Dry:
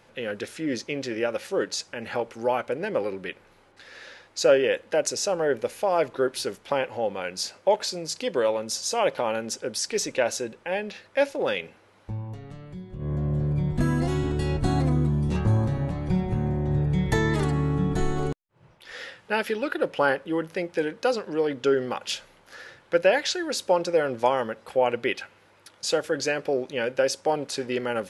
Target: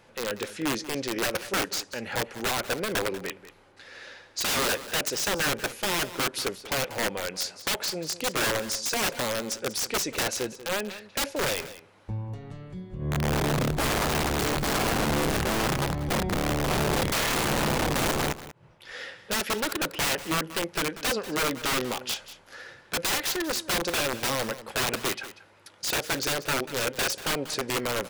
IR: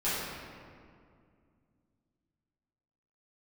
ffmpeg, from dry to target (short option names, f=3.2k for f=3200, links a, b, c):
-filter_complex "[0:a]aeval=exprs='(mod(11.2*val(0)+1,2)-1)/11.2':c=same,asplit=2[a][b];[b]aecho=0:1:189:0.178[c];[a][c]amix=inputs=2:normalize=0"